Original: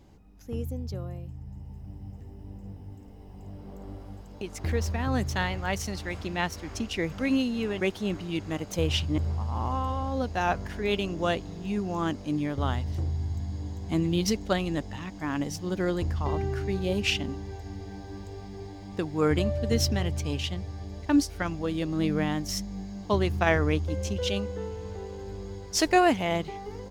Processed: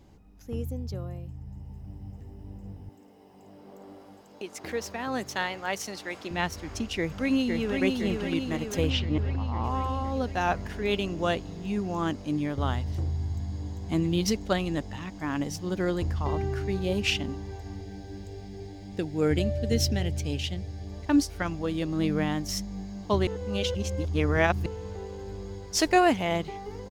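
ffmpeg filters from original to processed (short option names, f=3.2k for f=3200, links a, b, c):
-filter_complex "[0:a]asettb=1/sr,asplit=3[a][b][c];[a]atrim=end=2.894[d];[b]atrim=start=2.89:end=6.31,asetpts=PTS-STARTPTS,afade=t=in:d=0.004:c=qsin,afade=t=out:st=3.416:d=0.004:c=qsin,highpass=280[e];[c]atrim=start=6.306[f];[d][e]acrossfade=d=0.004:c1=hsin:c2=qsin[g];[g][f]acrossfade=d=0.004:c1=qsin:c2=hsin,asplit=2[h][i];[i]afade=t=in:st=6.96:d=0.01,afade=t=out:st=7.82:d=0.01,aecho=0:1:510|1020|1530|2040|2550|3060|3570|4080|4590|5100:0.668344|0.434424|0.282375|0.183544|0.119304|0.0775473|0.0504058|0.0327637|0.0212964|0.0138427[j];[h][j]amix=inputs=2:normalize=0,asettb=1/sr,asplit=3[k][l][m];[k]atrim=end=8.904[n];[l]atrim=start=8.9:end=9.64,asetpts=PTS-STARTPTS,afade=t=in:d=0.004:c=qsin,afade=t=out:st=0.736:d=0.004:c=qsin,lowpass=4.4k[o];[m]atrim=start=9.636[p];[n][o]acrossfade=d=0.004:c1=hsin:c2=qsin[q];[q][p]acrossfade=d=0.004:c1=qsin:c2=hsin,asettb=1/sr,asplit=3[r][s][t];[r]atrim=end=17.814[u];[s]atrim=start=17.81:end=20.87,asetpts=PTS-STARTPTS,afade=t=in:d=0.004:c=qsin,afade=t=out:st=3.056:d=0.004:c=qsin,equalizer=f=1.1k:t=o:w=0.48:g=-14.5[v];[t]atrim=start=20.866[w];[u][v]acrossfade=d=0.004:c1=hsin:c2=qsin[x];[x][w]acrossfade=d=0.004:c1=qsin:c2=hsin,asplit=3[y][z][aa];[y]atrim=end=23.272[ab];[z]atrim=start=23.268:end=24.662,asetpts=PTS-STARTPTS,areverse[ac];[aa]atrim=start=24.658[ad];[ab][ac]acrossfade=d=0.004:c1=hsin:c2=hsin[ae];[ae][ad]acrossfade=d=0.004:c1=hsin:c2=hsin"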